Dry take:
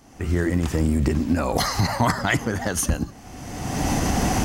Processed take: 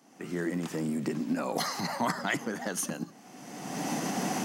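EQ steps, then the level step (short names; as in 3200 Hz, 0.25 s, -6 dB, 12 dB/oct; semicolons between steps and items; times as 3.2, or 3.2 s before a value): steep high-pass 160 Hz 36 dB/oct; -8.0 dB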